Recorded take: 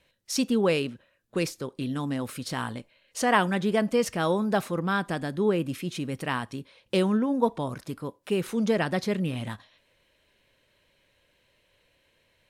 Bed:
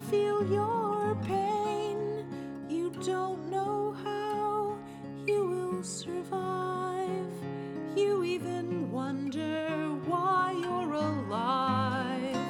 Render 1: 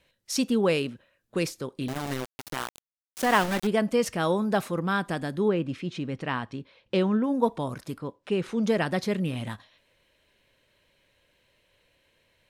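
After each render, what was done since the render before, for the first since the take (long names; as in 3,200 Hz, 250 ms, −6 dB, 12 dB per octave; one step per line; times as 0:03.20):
0:01.88–0:03.67: centre clipping without the shift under −27 dBFS
0:05.48–0:07.24: high-frequency loss of the air 120 metres
0:07.98–0:08.64: high-frequency loss of the air 80 metres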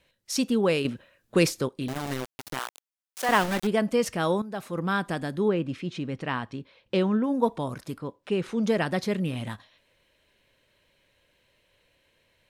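0:00.85–0:01.68: clip gain +6.5 dB
0:02.59–0:03.29: high-pass filter 520 Hz
0:04.42–0:04.82: fade in quadratic, from −12 dB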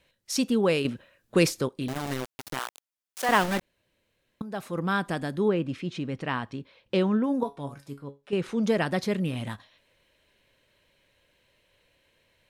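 0:03.61–0:04.41: fill with room tone
0:07.43–0:08.33: tuned comb filter 140 Hz, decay 0.23 s, mix 80%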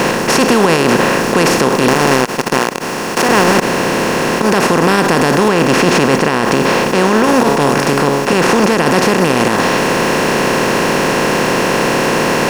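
compressor on every frequency bin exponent 0.2
boost into a limiter +9.5 dB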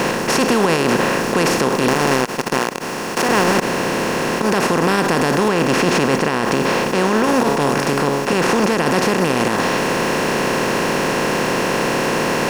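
level −5 dB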